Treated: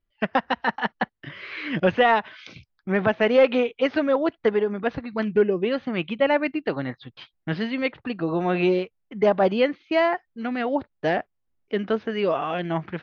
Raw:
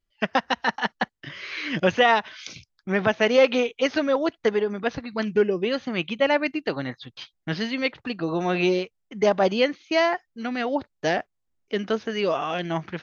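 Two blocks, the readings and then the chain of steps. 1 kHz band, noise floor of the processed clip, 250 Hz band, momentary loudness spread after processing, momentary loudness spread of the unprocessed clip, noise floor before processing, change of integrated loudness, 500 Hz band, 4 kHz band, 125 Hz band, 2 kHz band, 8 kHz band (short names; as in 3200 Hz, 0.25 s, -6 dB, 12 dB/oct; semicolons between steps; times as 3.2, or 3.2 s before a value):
+0.5 dB, -75 dBFS, +1.5 dB, 11 LU, 12 LU, -77 dBFS, +0.5 dB, +1.0 dB, -4.5 dB, +1.5 dB, -1.0 dB, n/a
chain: in parallel at -6.5 dB: overloaded stage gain 13 dB; on the sum: air absorption 290 m; gain -1.5 dB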